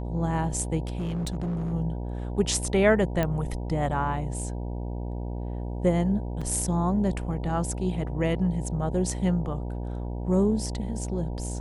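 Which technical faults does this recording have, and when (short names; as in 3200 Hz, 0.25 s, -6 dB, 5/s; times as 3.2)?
buzz 60 Hz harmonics 16 -32 dBFS
0.87–1.74 clipped -26 dBFS
3.23 pop -13 dBFS
6.41–6.42 gap 5.3 ms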